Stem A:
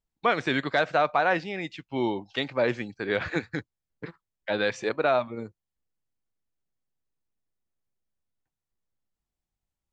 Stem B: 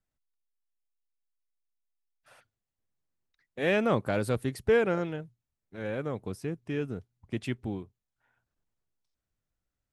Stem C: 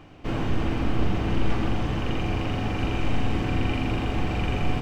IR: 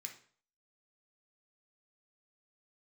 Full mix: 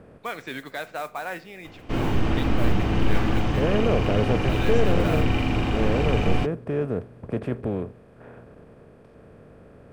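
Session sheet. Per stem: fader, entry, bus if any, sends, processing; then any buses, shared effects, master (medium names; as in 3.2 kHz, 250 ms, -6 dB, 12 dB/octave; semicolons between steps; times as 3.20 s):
-10.0 dB, 0.00 s, send -4 dB, modulation noise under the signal 21 dB
-8.5 dB, 0.00 s, no send, spectral levelling over time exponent 0.4; tilt shelf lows +9.5 dB, about 1.4 kHz
+2.5 dB, 1.65 s, no send, none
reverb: on, RT60 0.50 s, pre-delay 3 ms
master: none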